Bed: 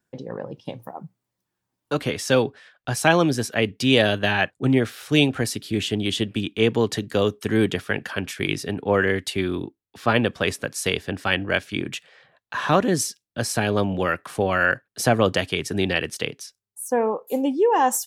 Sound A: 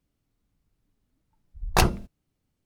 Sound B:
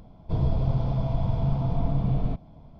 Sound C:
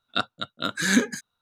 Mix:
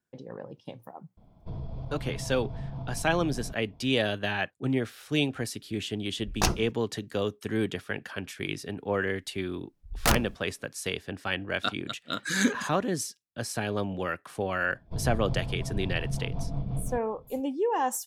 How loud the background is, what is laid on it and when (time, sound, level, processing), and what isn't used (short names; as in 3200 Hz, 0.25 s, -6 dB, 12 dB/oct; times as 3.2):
bed -8.5 dB
1.17 add B -8 dB + compressor, threshold -24 dBFS
4.65 add A -6.5 dB + bell 5900 Hz +8.5 dB 0.72 oct
8.29 add A -4 dB + wrapped overs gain 10.5 dB
11.48 add C -4.5 dB
14.62 add B -6 dB + rotary speaker horn 5.5 Hz